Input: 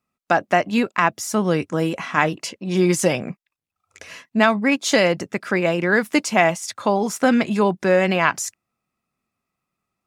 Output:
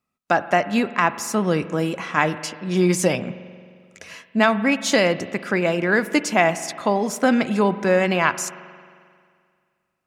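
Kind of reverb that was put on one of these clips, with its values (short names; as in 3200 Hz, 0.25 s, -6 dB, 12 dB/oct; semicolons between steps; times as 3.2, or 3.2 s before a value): spring tank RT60 2.1 s, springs 44 ms, chirp 70 ms, DRR 13.5 dB; gain -1 dB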